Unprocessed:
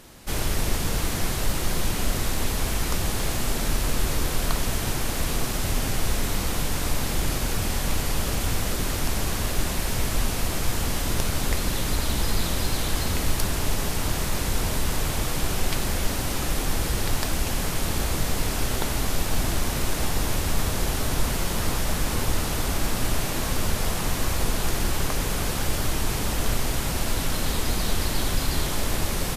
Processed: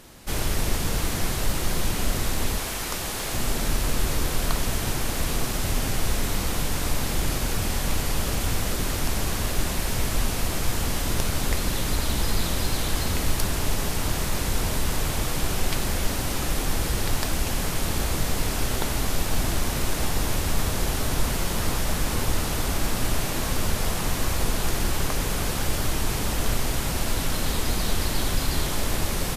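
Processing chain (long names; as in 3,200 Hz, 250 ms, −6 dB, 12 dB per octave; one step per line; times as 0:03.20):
0:02.58–0:03.33: low-shelf EQ 250 Hz −10.5 dB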